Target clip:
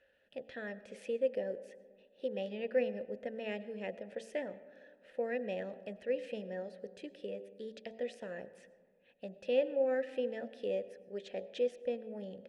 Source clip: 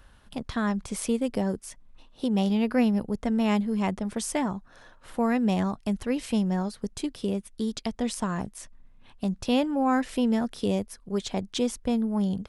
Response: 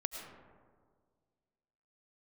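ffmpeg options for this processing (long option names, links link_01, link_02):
-filter_complex "[0:a]asplit=3[link_01][link_02][link_03];[link_01]bandpass=frequency=530:width_type=q:width=8,volume=0dB[link_04];[link_02]bandpass=frequency=1840:width_type=q:width=8,volume=-6dB[link_05];[link_03]bandpass=frequency=2480:width_type=q:width=8,volume=-9dB[link_06];[link_04][link_05][link_06]amix=inputs=3:normalize=0,bandreject=frequency=56.09:width_type=h:width=4,bandreject=frequency=112.18:width_type=h:width=4,bandreject=frequency=168.27:width_type=h:width=4,bandreject=frequency=224.36:width_type=h:width=4,bandreject=frequency=280.45:width_type=h:width=4,bandreject=frequency=336.54:width_type=h:width=4,bandreject=frequency=392.63:width_type=h:width=4,bandreject=frequency=448.72:width_type=h:width=4,bandreject=frequency=504.81:width_type=h:width=4,bandreject=frequency=560.9:width_type=h:width=4,bandreject=frequency=616.99:width_type=h:width=4,bandreject=frequency=673.08:width_type=h:width=4,bandreject=frequency=729.17:width_type=h:width=4,bandreject=frequency=785.26:width_type=h:width=4,bandreject=frequency=841.35:width_type=h:width=4,bandreject=frequency=897.44:width_type=h:width=4,asplit=2[link_07][link_08];[1:a]atrim=start_sample=2205[link_09];[link_08][link_09]afir=irnorm=-1:irlink=0,volume=-10.5dB[link_10];[link_07][link_10]amix=inputs=2:normalize=0"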